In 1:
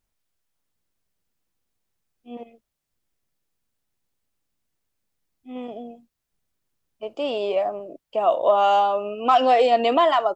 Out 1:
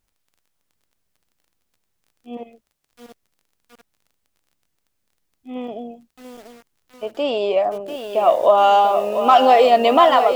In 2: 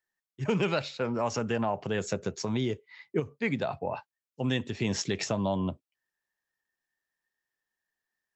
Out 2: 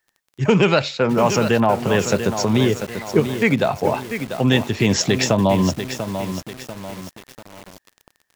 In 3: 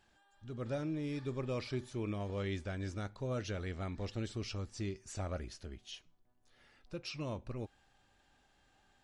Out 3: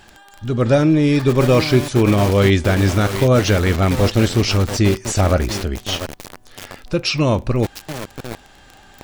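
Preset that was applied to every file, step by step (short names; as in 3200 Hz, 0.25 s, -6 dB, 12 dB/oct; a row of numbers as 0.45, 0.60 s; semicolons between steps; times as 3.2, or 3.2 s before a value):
crackle 23/s -50 dBFS; lo-fi delay 0.692 s, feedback 55%, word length 7-bit, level -8 dB; normalise peaks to -1.5 dBFS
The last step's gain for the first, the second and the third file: +4.5, +12.0, +24.0 dB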